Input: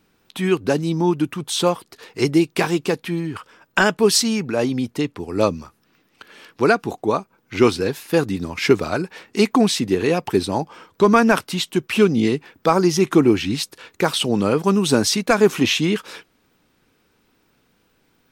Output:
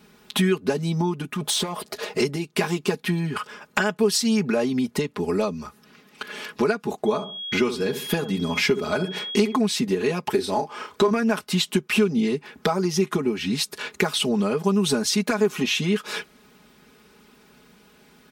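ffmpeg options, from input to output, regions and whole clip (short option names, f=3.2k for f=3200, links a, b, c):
-filter_complex "[0:a]asettb=1/sr,asplit=3[a][b][c];[a]atrim=end=1.364[d];[b]atrim=start=1.36:end=2.2,asetpts=PTS-STARTPTS,afade=t=in:d=0.004:c=qsin,afade=t=out:st=0.836:d=0.004:c=qsin,equalizer=f=610:w=2.7:g=10,acompressor=threshold=-26dB:ratio=10:attack=3.2:release=140:knee=1:detection=peak,asoftclip=type=hard:threshold=-25dB[e];[c]atrim=start=2.196[f];[d][e]acrossfade=d=0.004:c1=hsin:c2=qsin[g];[g][f]acrossfade=d=0.004:c1=qsin:c2=hsin,asettb=1/sr,asplit=3[h][i][j];[h]atrim=end=7.064[k];[i]atrim=start=7.06:end=9.56,asetpts=PTS-STARTPTS,afade=t=in:d=0.004:c=qsin,afade=t=out:st=2.496:d=0.004:c=qsin,agate=range=-33dB:threshold=-40dB:ratio=3:release=100:detection=peak,aeval=exprs='val(0)+0.0112*sin(2*PI*3300*n/s)':c=same,asplit=2[l][m];[m]adelay=65,lowpass=f=960:p=1,volume=-10.5dB,asplit=2[n][o];[o]adelay=65,lowpass=f=960:p=1,volume=0.26,asplit=2[p][q];[q]adelay=65,lowpass=f=960:p=1,volume=0.26[r];[l][n][p][r]amix=inputs=4:normalize=0,atrim=end_sample=110250[s];[j]atrim=start=9.556[t];[k][s]acrossfade=d=0.004:c1=hsin:c2=qsin[u];[u][t]acrossfade=d=0.004:c1=qsin:c2=hsin,asettb=1/sr,asplit=3[v][w][x];[v]atrim=end=10.324[y];[w]atrim=start=10.32:end=11.11,asetpts=PTS-STARTPTS,afade=t=in:d=0.004:c=qsin,afade=t=out:st=0.786:d=0.004:c=qsin,highpass=46,equalizer=f=170:w=3:g=-12.5,asplit=2[z][aa];[aa]adelay=32,volume=-7dB[ab];[z][ab]amix=inputs=2:normalize=0,atrim=end_sample=34839[ac];[x]atrim=start=11.106[ad];[y][ac]acrossfade=d=0.004:c1=hsin:c2=qsin[ae];[ae][ad]acrossfade=d=0.004:c1=qsin:c2=hsin,highpass=49,acompressor=threshold=-29dB:ratio=8,aecho=1:1:4.8:0.93,volume=6.5dB"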